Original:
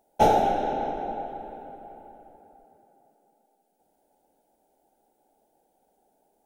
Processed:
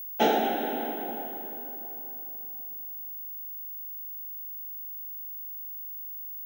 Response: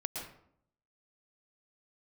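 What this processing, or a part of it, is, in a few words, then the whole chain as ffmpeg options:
old television with a line whistle: -af "highpass=frequency=220:width=0.5412,highpass=frequency=220:width=1.3066,equalizer=frequency=240:width_type=q:width=4:gain=5,equalizer=frequency=570:width_type=q:width=4:gain=-6,equalizer=frequency=850:width_type=q:width=4:gain=-7,equalizer=frequency=1800:width_type=q:width=4:gain=7,equalizer=frequency=3100:width_type=q:width=4:gain=8,equalizer=frequency=5400:width_type=q:width=4:gain=-3,lowpass=frequency=6900:width=0.5412,lowpass=frequency=6900:width=1.3066,aeval=exprs='val(0)+0.0158*sin(2*PI*15625*n/s)':channel_layout=same"

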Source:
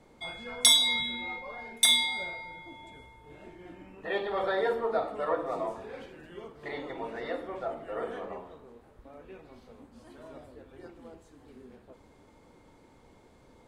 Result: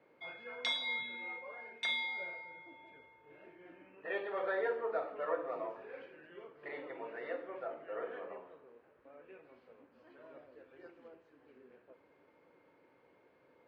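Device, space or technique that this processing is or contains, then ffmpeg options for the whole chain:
kitchen radio: -filter_complex "[0:a]highpass=210,equalizer=frequency=220:width_type=q:width=4:gain=-9,equalizer=frequency=530:width_type=q:width=4:gain=4,equalizer=frequency=790:width_type=q:width=4:gain=-4,equalizer=frequency=1600:width_type=q:width=4:gain=5,equalizer=frequency=2500:width_type=q:width=4:gain=4,equalizer=frequency=3600:width_type=q:width=4:gain=-8,lowpass=frequency=3800:width=0.5412,lowpass=frequency=3800:width=1.3066,asettb=1/sr,asplit=3[link_01][link_02][link_03];[link_01]atrim=end=10.524[link_04];[link_02]atrim=start=10.52:end=11.08,asetpts=PTS-STARTPTS,afade=type=in:duration=0.004:curve=qsin,afade=type=out:start_time=0.556:duration=0.004:curve=qsin,equalizer=frequency=8600:width_type=o:width=1.3:gain=13[link_05];[link_03]atrim=start=11.076[link_06];[link_04][link_05]acrossfade=duration=0.004:curve1=hsin:curve2=qsin[link_07];[link_07][link_06]acrossfade=duration=0.004:curve1=qsin:curve2=hsin,volume=-7.5dB"

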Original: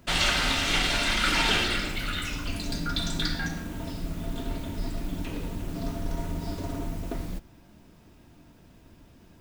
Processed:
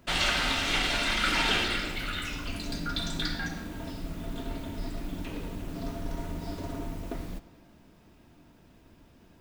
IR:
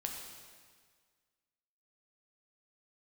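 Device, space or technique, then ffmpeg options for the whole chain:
filtered reverb send: -filter_complex "[0:a]asplit=2[link_01][link_02];[link_02]highpass=180,lowpass=5100[link_03];[1:a]atrim=start_sample=2205[link_04];[link_03][link_04]afir=irnorm=-1:irlink=0,volume=-8dB[link_05];[link_01][link_05]amix=inputs=2:normalize=0,volume=-4dB"

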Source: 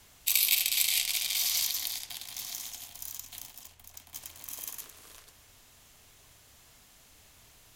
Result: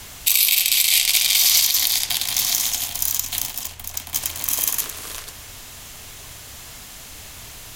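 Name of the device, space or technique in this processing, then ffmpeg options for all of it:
mastering chain: -af "equalizer=frequency=430:width_type=o:width=2.8:gain=-2,acompressor=threshold=-34dB:ratio=2.5,alimiter=level_in=20.5dB:limit=-1dB:release=50:level=0:latency=1,volume=-1dB"

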